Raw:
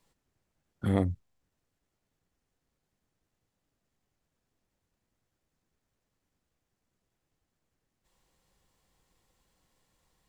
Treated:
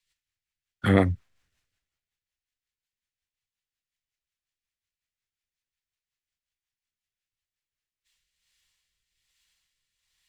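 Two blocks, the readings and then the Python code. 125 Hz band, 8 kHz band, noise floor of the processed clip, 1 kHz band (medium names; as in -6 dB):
+5.0 dB, no reading, under -85 dBFS, +9.0 dB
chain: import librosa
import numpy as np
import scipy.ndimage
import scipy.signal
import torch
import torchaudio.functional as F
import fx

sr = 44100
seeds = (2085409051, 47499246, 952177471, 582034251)

y = fx.peak_eq(x, sr, hz=1700.0, db=14.0, octaves=2.5)
y = fx.rotary_switch(y, sr, hz=5.5, then_hz=1.2, switch_at_s=7.51)
y = fx.band_widen(y, sr, depth_pct=70)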